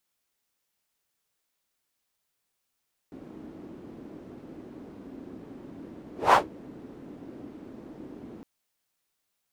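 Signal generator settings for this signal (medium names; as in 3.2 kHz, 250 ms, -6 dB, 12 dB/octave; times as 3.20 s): whoosh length 5.31 s, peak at 3.22 s, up 0.20 s, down 0.14 s, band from 290 Hz, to 1 kHz, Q 2.8, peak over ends 27 dB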